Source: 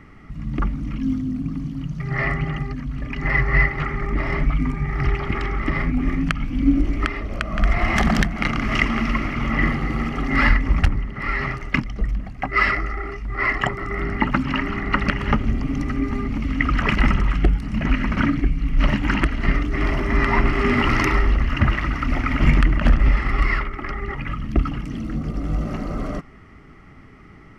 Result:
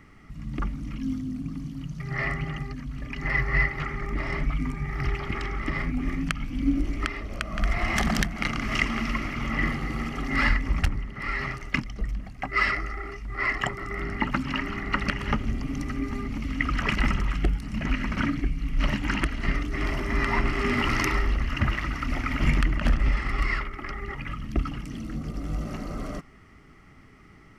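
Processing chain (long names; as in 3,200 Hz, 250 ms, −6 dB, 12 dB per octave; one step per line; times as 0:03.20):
high-shelf EQ 4,100 Hz +11 dB
level −7 dB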